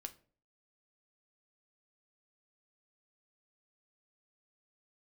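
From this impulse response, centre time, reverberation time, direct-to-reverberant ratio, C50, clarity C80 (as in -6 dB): 5 ms, 0.45 s, 7.5 dB, 17.5 dB, 22.5 dB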